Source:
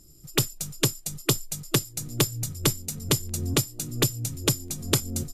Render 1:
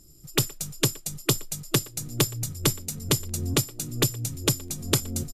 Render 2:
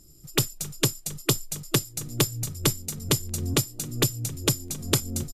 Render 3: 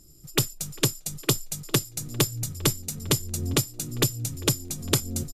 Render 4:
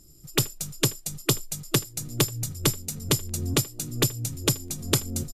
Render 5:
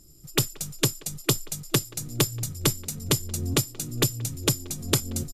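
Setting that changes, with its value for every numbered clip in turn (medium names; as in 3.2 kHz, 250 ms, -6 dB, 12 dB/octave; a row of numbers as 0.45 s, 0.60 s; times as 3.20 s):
speakerphone echo, time: 120 ms, 270 ms, 400 ms, 80 ms, 180 ms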